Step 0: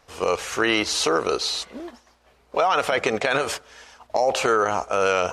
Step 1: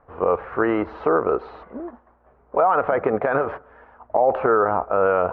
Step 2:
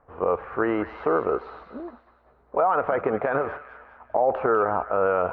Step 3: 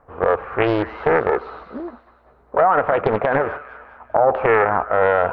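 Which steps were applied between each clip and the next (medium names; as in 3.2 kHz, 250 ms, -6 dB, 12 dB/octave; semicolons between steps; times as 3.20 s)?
low-pass 1.4 kHz 24 dB/octave; trim +3 dB
feedback echo behind a high-pass 201 ms, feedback 47%, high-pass 1.7 kHz, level -7 dB; trim -3.5 dB
loudspeaker Doppler distortion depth 0.55 ms; trim +6 dB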